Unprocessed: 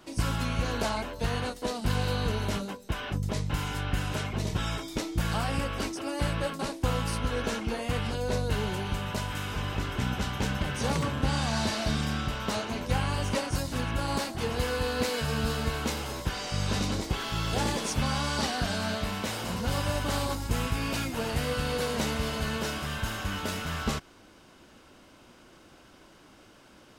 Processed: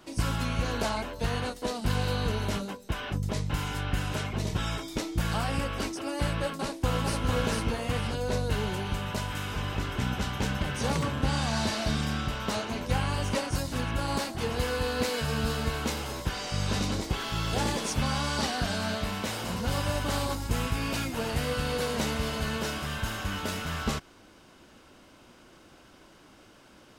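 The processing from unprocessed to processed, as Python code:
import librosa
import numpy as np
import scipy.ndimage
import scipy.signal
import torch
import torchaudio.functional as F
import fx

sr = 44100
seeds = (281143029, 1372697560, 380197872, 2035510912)

y = fx.echo_throw(x, sr, start_s=6.48, length_s=0.77, ms=450, feedback_pct=30, wet_db=-2.0)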